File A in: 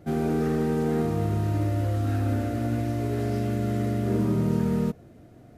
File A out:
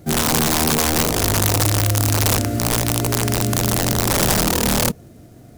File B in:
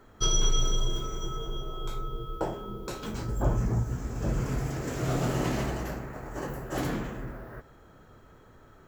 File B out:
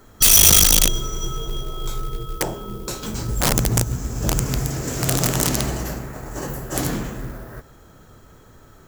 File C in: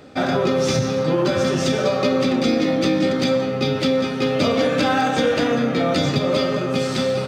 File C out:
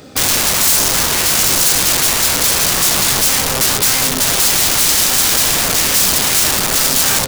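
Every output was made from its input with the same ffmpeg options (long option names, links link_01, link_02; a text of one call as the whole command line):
ffmpeg -i in.wav -af "aeval=exprs='(mod(9.44*val(0)+1,2)-1)/9.44':channel_layout=same,bass=frequency=250:gain=3,treble=frequency=4000:gain=11,acrusher=bits=5:mode=log:mix=0:aa=0.000001,volume=4.5dB" out.wav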